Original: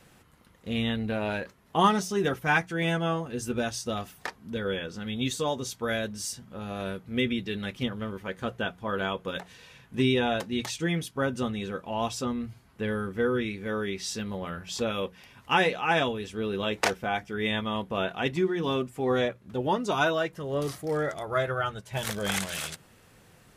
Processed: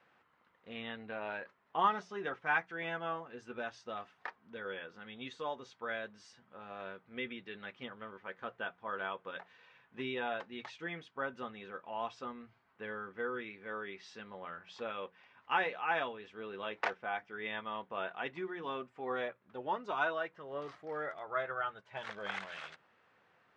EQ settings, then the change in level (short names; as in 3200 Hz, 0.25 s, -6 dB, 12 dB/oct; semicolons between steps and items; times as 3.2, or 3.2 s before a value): band-pass 1300 Hz, Q 0.83; air absorption 130 m; -5.0 dB